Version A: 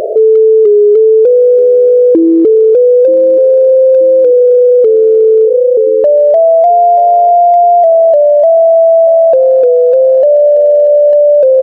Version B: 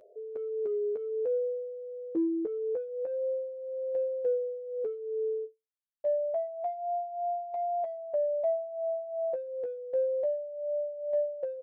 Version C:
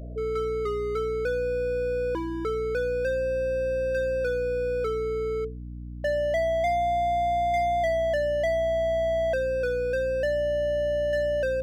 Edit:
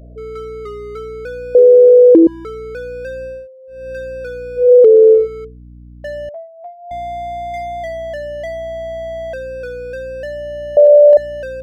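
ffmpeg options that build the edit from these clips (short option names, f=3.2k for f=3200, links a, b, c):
-filter_complex "[0:a]asplit=3[a][b][c];[1:a]asplit=2[d][e];[2:a]asplit=6[f][g][h][i][j][k];[f]atrim=end=1.552[l];[a]atrim=start=1.548:end=2.272[m];[g]atrim=start=2.268:end=3.48[n];[d]atrim=start=3.24:end=3.91[o];[h]atrim=start=3.67:end=4.72[p];[b]atrim=start=4.56:end=5.28[q];[i]atrim=start=5.12:end=6.292[r];[e]atrim=start=6.288:end=6.912[s];[j]atrim=start=6.908:end=10.772[t];[c]atrim=start=10.768:end=11.172[u];[k]atrim=start=11.168[v];[l][m]acrossfade=d=0.004:c1=hsin:c2=hsin[w];[w][n]acrossfade=d=0.004:c1=hsin:c2=hsin[x];[x][o]acrossfade=d=0.24:c1=tri:c2=tri[y];[y][p]acrossfade=d=0.24:c1=tri:c2=tri[z];[z][q]acrossfade=d=0.16:c1=tri:c2=tri[aa];[aa][r]acrossfade=d=0.16:c1=tri:c2=tri[ab];[ab][s]acrossfade=d=0.004:c1=hsin:c2=hsin[ac];[ac][t]acrossfade=d=0.004:c1=hsin:c2=hsin[ad];[ad][u]acrossfade=d=0.004:c1=hsin:c2=hsin[ae];[ae][v]acrossfade=d=0.004:c1=hsin:c2=hsin"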